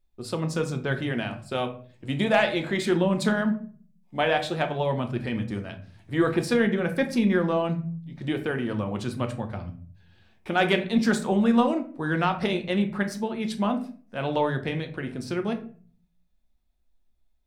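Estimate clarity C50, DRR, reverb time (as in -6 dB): 12.5 dB, 5.5 dB, 0.45 s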